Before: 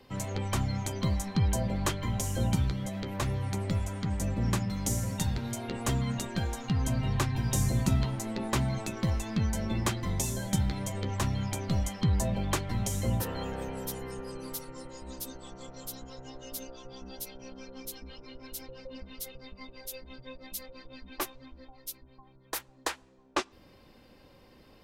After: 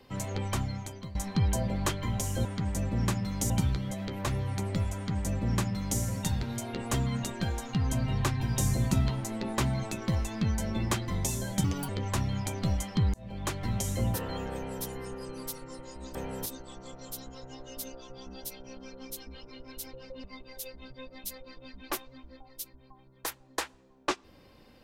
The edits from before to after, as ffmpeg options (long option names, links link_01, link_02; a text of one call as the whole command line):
ffmpeg -i in.wav -filter_complex "[0:a]asplit=10[link_01][link_02][link_03][link_04][link_05][link_06][link_07][link_08][link_09][link_10];[link_01]atrim=end=1.15,asetpts=PTS-STARTPTS,afade=type=out:start_time=0.46:duration=0.69:silence=0.11885[link_11];[link_02]atrim=start=1.15:end=2.452,asetpts=PTS-STARTPTS,afade=type=in:duration=0.004:curve=hsin:silence=0.11885[link_12];[link_03]atrim=start=3.898:end=4.952[link_13];[link_04]atrim=start=2.448:end=10.594[link_14];[link_05]atrim=start=10.59:end=10.95,asetpts=PTS-STARTPTS,asetrate=63945,aresample=44100[link_15];[link_06]atrim=start=10.946:end=12.2,asetpts=PTS-STARTPTS,afade=type=out:start_time=1.25:duration=0.004:curve=hsin[link_16];[link_07]atrim=start=12.2:end=15.212,asetpts=PTS-STARTPTS,afade=type=in:duration=0.51[link_17];[link_08]atrim=start=13.588:end=13.902[link_18];[link_09]atrim=start=15.208:end=18.992[link_19];[link_10]atrim=start=19.518[link_20];[link_11][link_12]concat=n=2:v=0:a=1[link_21];[link_21][link_13]acrossfade=duration=0.004:curve1=hsin:curve2=hsin[link_22];[link_22][link_14]acrossfade=duration=0.004:curve1=hsin:curve2=hsin[link_23];[link_23][link_15]acrossfade=duration=0.004:curve1=hsin:curve2=hsin[link_24];[link_16][link_17]concat=n=2:v=0:a=1[link_25];[link_24][link_25]acrossfade=duration=0.004:curve1=hsin:curve2=hsin[link_26];[link_26][link_18]acrossfade=duration=0.004:curve1=hsin:curve2=hsin[link_27];[link_27][link_19]acrossfade=duration=0.004:curve1=hsin:curve2=hsin[link_28];[link_28][link_20]acrossfade=duration=0.004:curve1=hsin:curve2=hsin" out.wav